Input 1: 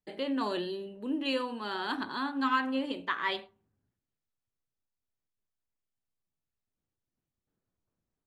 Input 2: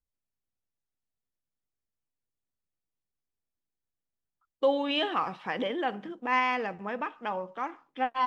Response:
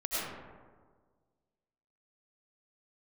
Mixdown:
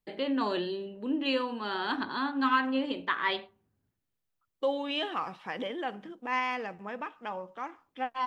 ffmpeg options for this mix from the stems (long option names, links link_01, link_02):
-filter_complex "[0:a]lowpass=3900,volume=2dB[link_01];[1:a]volume=-4.5dB[link_02];[link_01][link_02]amix=inputs=2:normalize=0,crystalizer=i=1:c=0"